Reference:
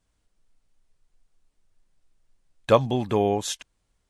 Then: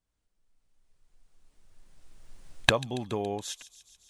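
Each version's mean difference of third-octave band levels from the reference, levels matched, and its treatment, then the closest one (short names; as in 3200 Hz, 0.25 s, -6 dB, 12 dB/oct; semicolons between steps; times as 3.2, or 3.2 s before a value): 3.5 dB: recorder AGC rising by 12 dB/s; on a send: thin delay 0.14 s, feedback 69%, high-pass 4300 Hz, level -12.5 dB; on the sum: gain -11 dB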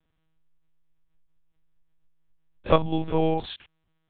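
8.0 dB: stepped spectrum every 50 ms; monotone LPC vocoder at 8 kHz 160 Hz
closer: first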